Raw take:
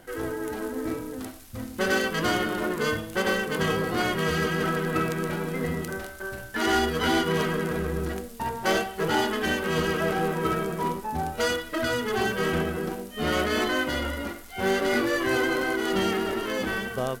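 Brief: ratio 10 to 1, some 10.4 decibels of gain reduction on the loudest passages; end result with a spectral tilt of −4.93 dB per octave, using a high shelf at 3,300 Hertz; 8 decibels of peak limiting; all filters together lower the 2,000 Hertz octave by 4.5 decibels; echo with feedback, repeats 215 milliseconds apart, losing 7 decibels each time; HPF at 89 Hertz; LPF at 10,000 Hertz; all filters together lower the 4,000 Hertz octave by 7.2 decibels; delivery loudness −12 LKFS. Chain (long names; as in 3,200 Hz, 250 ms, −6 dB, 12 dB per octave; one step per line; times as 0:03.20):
high-pass filter 89 Hz
low-pass filter 10,000 Hz
parametric band 2,000 Hz −4 dB
high-shelf EQ 3,300 Hz −6 dB
parametric band 4,000 Hz −4 dB
downward compressor 10 to 1, threshold −32 dBFS
brickwall limiter −30 dBFS
repeating echo 215 ms, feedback 45%, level −7 dB
level +26 dB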